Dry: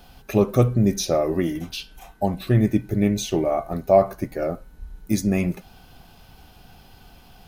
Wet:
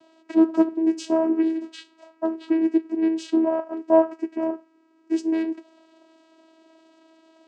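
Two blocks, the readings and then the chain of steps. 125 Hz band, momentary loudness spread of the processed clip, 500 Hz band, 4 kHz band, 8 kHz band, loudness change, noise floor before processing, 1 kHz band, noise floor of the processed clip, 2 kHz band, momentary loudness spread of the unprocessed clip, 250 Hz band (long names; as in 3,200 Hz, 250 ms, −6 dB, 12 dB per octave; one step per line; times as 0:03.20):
below −30 dB, 10 LU, −2.0 dB, −9.5 dB, below −10 dB, −1.0 dB, −50 dBFS, −3.5 dB, −60 dBFS, −5.0 dB, 11 LU, +2.0 dB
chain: channel vocoder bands 8, saw 323 Hz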